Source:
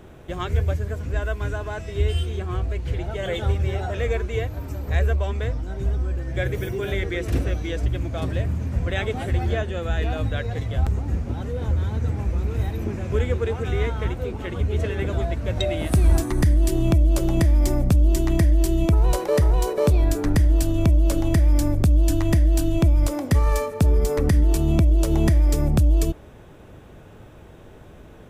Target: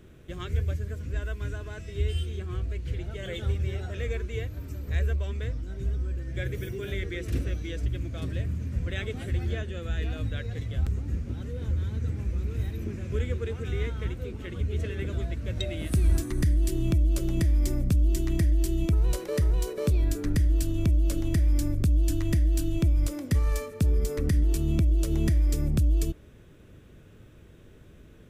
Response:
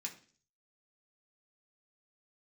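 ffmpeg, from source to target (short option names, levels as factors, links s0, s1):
-af "equalizer=f=810:w=1.4:g=-13,volume=0.531"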